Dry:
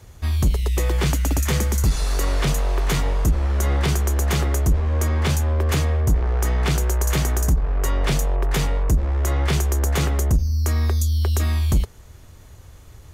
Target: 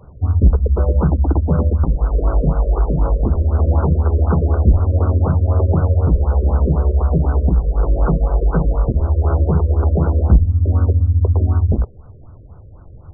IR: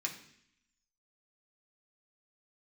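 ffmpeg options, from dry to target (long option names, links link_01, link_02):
-filter_complex "[0:a]asplit=2[link_01][link_02];[link_02]asetrate=52444,aresample=44100,atempo=0.840896,volume=0dB[link_03];[link_01][link_03]amix=inputs=2:normalize=0,afftfilt=real='re*lt(b*sr/1024,600*pow(1600/600,0.5+0.5*sin(2*PI*4*pts/sr)))':imag='im*lt(b*sr/1024,600*pow(1600/600,0.5+0.5*sin(2*PI*4*pts/sr)))':win_size=1024:overlap=0.75,volume=2.5dB"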